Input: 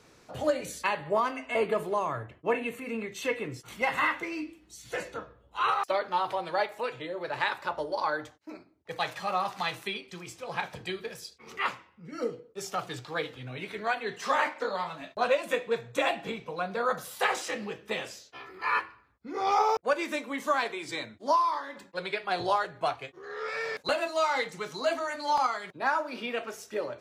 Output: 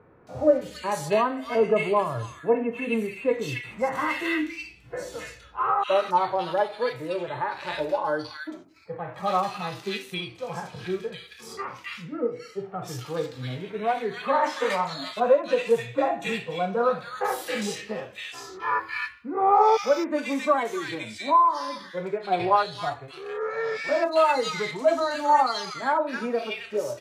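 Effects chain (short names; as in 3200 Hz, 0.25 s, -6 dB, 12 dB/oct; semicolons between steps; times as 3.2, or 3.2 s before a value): harmonic-percussive split percussive -17 dB; 14.43–14.93 high shelf 2800 Hz +10.5 dB; bands offset in time lows, highs 0.27 s, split 1700 Hz; gain +8.5 dB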